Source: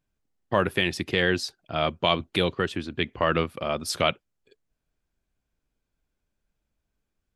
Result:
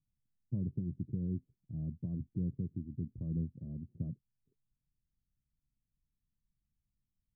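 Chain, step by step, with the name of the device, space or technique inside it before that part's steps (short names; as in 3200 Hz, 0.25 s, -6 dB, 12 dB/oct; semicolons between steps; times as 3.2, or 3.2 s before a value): the neighbour's flat through the wall (LPF 230 Hz 24 dB/oct; bell 130 Hz +6.5 dB 0.48 oct); gain -5.5 dB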